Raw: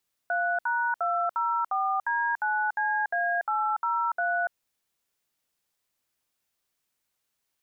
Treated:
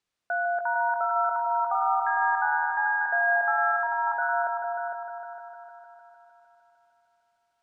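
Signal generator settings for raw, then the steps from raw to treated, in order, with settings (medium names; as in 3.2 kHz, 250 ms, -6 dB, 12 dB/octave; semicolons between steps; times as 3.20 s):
DTMF "3#204D9CA803", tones 288 ms, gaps 65 ms, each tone -26.5 dBFS
distance through air 74 m; multi-head delay 152 ms, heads all three, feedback 56%, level -8.5 dB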